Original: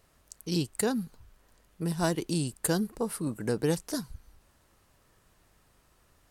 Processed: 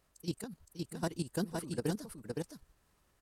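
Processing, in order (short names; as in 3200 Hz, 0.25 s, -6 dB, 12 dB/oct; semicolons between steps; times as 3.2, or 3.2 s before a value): time stretch by phase-locked vocoder 0.51×; level quantiser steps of 14 dB; echo 0.515 s -3.5 dB; gain -3.5 dB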